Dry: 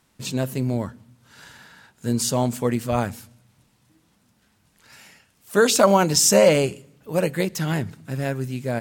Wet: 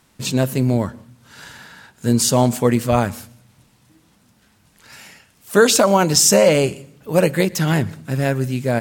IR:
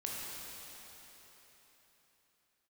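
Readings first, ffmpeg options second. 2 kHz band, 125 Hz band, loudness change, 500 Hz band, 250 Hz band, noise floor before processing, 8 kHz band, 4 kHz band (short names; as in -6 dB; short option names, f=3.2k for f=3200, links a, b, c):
+4.5 dB, +6.0 dB, +4.0 dB, +3.5 dB, +5.0 dB, -64 dBFS, +4.5 dB, +4.5 dB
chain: -filter_complex "[0:a]alimiter=limit=-9.5dB:level=0:latency=1:release=393,asplit=2[a][b];[1:a]atrim=start_sample=2205,atrim=end_sample=3969,adelay=118[c];[b][c]afir=irnorm=-1:irlink=0,volume=-23dB[d];[a][d]amix=inputs=2:normalize=0,volume=6.5dB"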